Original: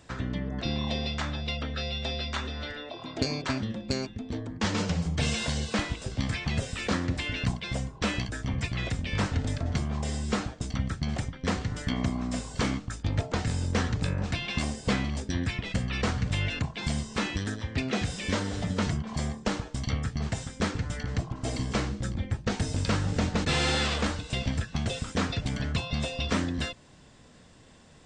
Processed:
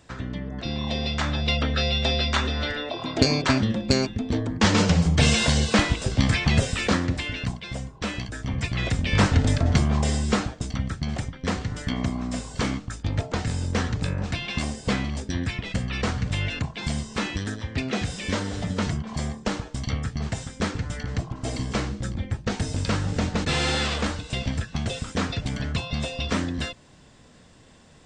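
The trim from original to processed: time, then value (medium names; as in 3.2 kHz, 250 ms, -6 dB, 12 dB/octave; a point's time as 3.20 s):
0.64 s 0 dB
1.53 s +9 dB
6.64 s +9 dB
7.53 s -1 dB
8.17 s -1 dB
9.23 s +9 dB
9.96 s +9 dB
10.79 s +2 dB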